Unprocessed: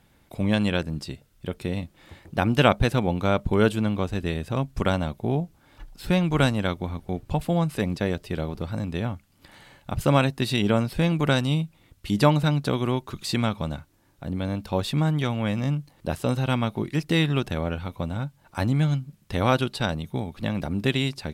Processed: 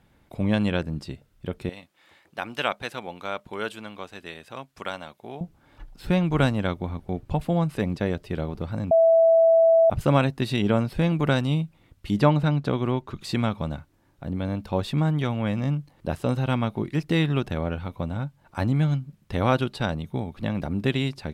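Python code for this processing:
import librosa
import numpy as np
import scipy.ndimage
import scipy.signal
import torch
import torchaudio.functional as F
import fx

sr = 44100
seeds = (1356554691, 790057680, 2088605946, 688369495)

y = fx.highpass(x, sr, hz=1500.0, slope=6, at=(1.69, 5.41))
y = fx.high_shelf(y, sr, hz=7100.0, db=-9.5, at=(12.2, 13.21))
y = fx.edit(y, sr, fx.bleep(start_s=8.91, length_s=0.99, hz=658.0, db=-13.0), tone=tone)
y = fx.high_shelf(y, sr, hz=3500.0, db=-8.0)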